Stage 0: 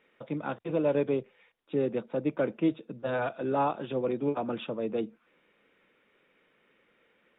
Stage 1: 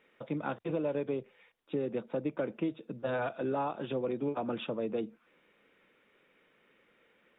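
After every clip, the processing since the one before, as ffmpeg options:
ffmpeg -i in.wav -af "acompressor=threshold=-29dB:ratio=6" out.wav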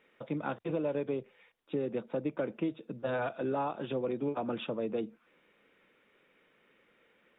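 ffmpeg -i in.wav -af anull out.wav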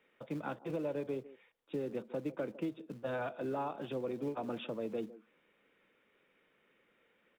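ffmpeg -i in.wav -filter_complex "[0:a]acrossover=split=210|970[link_01][link_02][link_03];[link_01]acrusher=bits=3:mode=log:mix=0:aa=0.000001[link_04];[link_02]aecho=1:1:155:0.188[link_05];[link_04][link_05][link_03]amix=inputs=3:normalize=0,volume=-4.5dB" out.wav

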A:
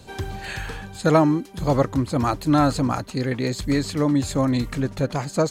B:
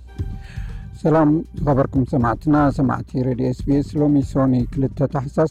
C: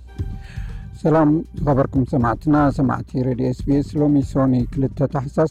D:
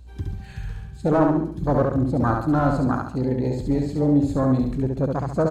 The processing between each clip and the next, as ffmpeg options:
ffmpeg -i in.wav -af "aeval=exprs='val(0)+0.00891*(sin(2*PI*60*n/s)+sin(2*PI*2*60*n/s)/2+sin(2*PI*3*60*n/s)/3+sin(2*PI*4*60*n/s)/4+sin(2*PI*5*60*n/s)/5)':channel_layout=same,volume=15dB,asoftclip=hard,volume=-15dB,afwtdn=0.0708,volume=4.5dB" out.wav
ffmpeg -i in.wav -af anull out.wav
ffmpeg -i in.wav -af "aecho=1:1:69|138|207|276|345:0.668|0.274|0.112|0.0461|0.0189,volume=-4.5dB" out.wav

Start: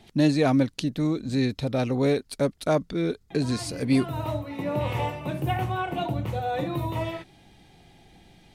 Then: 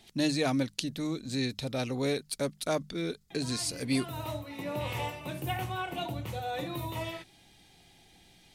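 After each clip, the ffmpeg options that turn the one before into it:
ffmpeg -i in.wav -af "highshelf=frequency=2400:gain=12,bandreject=frequency=50:width_type=h:width=6,bandreject=frequency=100:width_type=h:width=6,bandreject=frequency=150:width_type=h:width=6,bandreject=frequency=200:width_type=h:width=6,volume=-8dB" out.wav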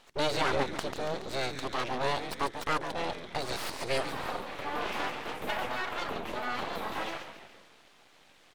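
ffmpeg -i in.wav -filter_complex "[0:a]asplit=7[link_01][link_02][link_03][link_04][link_05][link_06][link_07];[link_02]adelay=141,afreqshift=-120,volume=-9dB[link_08];[link_03]adelay=282,afreqshift=-240,volume=-14.4dB[link_09];[link_04]adelay=423,afreqshift=-360,volume=-19.7dB[link_10];[link_05]adelay=564,afreqshift=-480,volume=-25.1dB[link_11];[link_06]adelay=705,afreqshift=-600,volume=-30.4dB[link_12];[link_07]adelay=846,afreqshift=-720,volume=-35.8dB[link_13];[link_01][link_08][link_09][link_10][link_11][link_12][link_13]amix=inputs=7:normalize=0,aeval=exprs='abs(val(0))':channel_layout=same,asplit=2[link_14][link_15];[link_15]highpass=frequency=720:poles=1,volume=14dB,asoftclip=type=tanh:threshold=-7.5dB[link_16];[link_14][link_16]amix=inputs=2:normalize=0,lowpass=frequency=1600:poles=1,volume=-6dB" out.wav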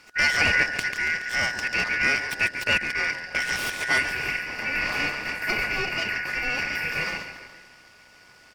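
ffmpeg -i in.wav -af "afftfilt=real='real(if(lt(b,272),68*(eq(floor(b/68),0)*1+eq(floor(b/68),1)*0+eq(floor(b/68),2)*3+eq(floor(b/68),3)*2)+mod(b,68),b),0)':imag='imag(if(lt(b,272),68*(eq(floor(b/68),0)*1+eq(floor(b/68),1)*0+eq(floor(b/68),2)*3+eq(floor(b/68),3)*2)+mod(b,68),b),0)':win_size=2048:overlap=0.75,volume=6.5dB" out.wav

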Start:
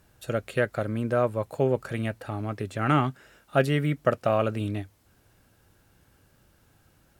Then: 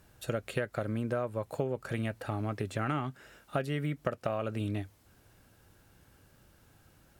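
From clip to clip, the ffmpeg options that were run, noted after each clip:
ffmpeg -i in.wav -af "acompressor=threshold=-28dB:ratio=12" out.wav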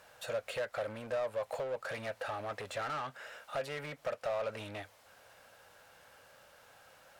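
ffmpeg -i in.wav -filter_complex "[0:a]asoftclip=type=hard:threshold=-27dB,asplit=2[link_01][link_02];[link_02]highpass=frequency=720:poles=1,volume=19dB,asoftclip=type=tanh:threshold=-27dB[link_03];[link_01][link_03]amix=inputs=2:normalize=0,lowpass=frequency=4100:poles=1,volume=-6dB,lowshelf=frequency=430:width_type=q:width=3:gain=-6,volume=-5dB" out.wav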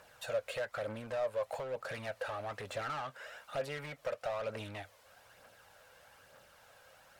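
ffmpeg -i in.wav -af "aphaser=in_gain=1:out_gain=1:delay=2.1:decay=0.38:speed=1.1:type=triangular,volume=-1.5dB" out.wav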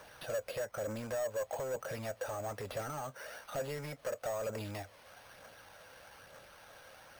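ffmpeg -i in.wav -filter_complex "[0:a]acrossover=split=760[link_01][link_02];[link_01]asoftclip=type=tanh:threshold=-38dB[link_03];[link_02]acompressor=threshold=-51dB:ratio=6[link_04];[link_03][link_04]amix=inputs=2:normalize=0,acrusher=samples=6:mix=1:aa=0.000001,volume=5dB" out.wav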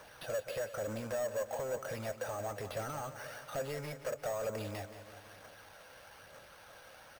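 ffmpeg -i in.wav -af "aecho=1:1:176|352|528|704|880|1056|1232:0.251|0.151|0.0904|0.0543|0.0326|0.0195|0.0117" out.wav

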